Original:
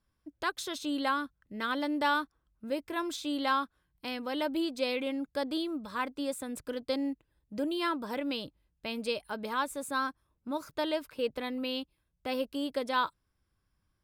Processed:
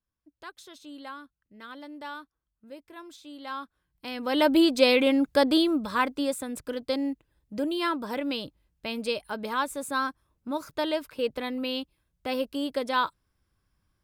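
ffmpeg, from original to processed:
ffmpeg -i in.wav -af "volume=11.5dB,afade=type=in:start_time=3.4:duration=0.74:silence=0.251189,afade=type=in:start_time=4.14:duration=0.36:silence=0.298538,afade=type=out:start_time=5.49:duration=1:silence=0.398107" out.wav

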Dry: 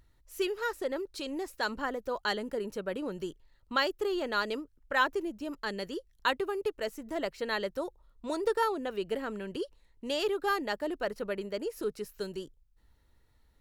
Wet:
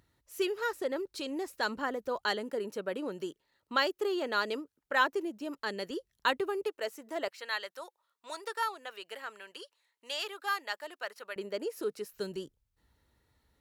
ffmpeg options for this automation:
ffmpeg -i in.wav -af "asetnsamples=nb_out_samples=441:pad=0,asendcmd='2.25 highpass f 220;5.9 highpass f 110;6.65 highpass f 400;7.28 highpass f 1000;11.36 highpass f 260;12.13 highpass f 72',highpass=100" out.wav

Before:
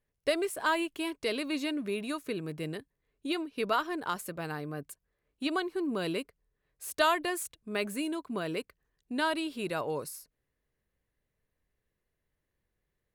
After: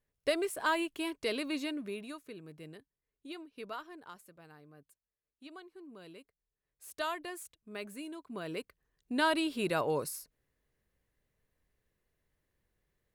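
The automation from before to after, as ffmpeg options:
ffmpeg -i in.wav -af "volume=19dB,afade=type=out:start_time=1.45:duration=0.81:silence=0.298538,afade=type=out:start_time=3.59:duration=0.73:silence=0.473151,afade=type=in:start_time=6.2:duration=0.64:silence=0.354813,afade=type=in:start_time=8.2:duration=1.22:silence=0.251189" out.wav

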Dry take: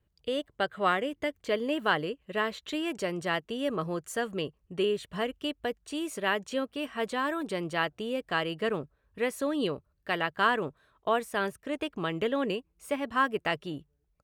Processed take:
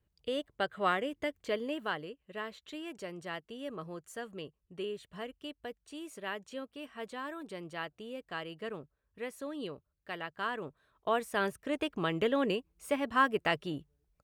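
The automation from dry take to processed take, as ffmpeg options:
ffmpeg -i in.wav -af "volume=6.5dB,afade=type=out:start_time=1.41:duration=0.58:silence=0.446684,afade=type=in:start_time=10.5:duration=1.06:silence=0.316228" out.wav

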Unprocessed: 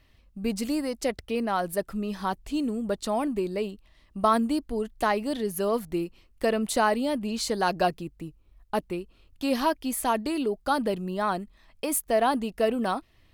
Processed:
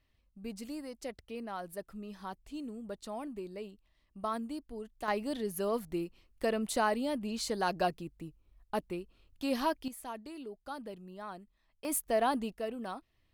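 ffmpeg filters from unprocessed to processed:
ffmpeg -i in.wav -af "asetnsamples=nb_out_samples=441:pad=0,asendcmd='5.08 volume volume -6.5dB;9.88 volume volume -17dB;11.85 volume volume -6dB;12.54 volume volume -13dB',volume=-13.5dB" out.wav

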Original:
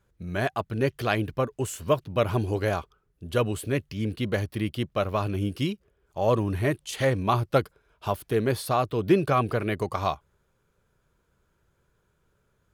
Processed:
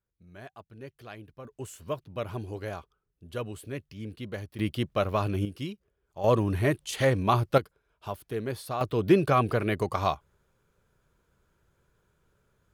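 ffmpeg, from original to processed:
ffmpeg -i in.wav -af "asetnsamples=nb_out_samples=441:pad=0,asendcmd='1.45 volume volume -10dB;4.59 volume volume -0.5dB;5.45 volume volume -8dB;6.24 volume volume 0dB;7.58 volume volume -8dB;8.81 volume volume 0dB',volume=-19dB" out.wav

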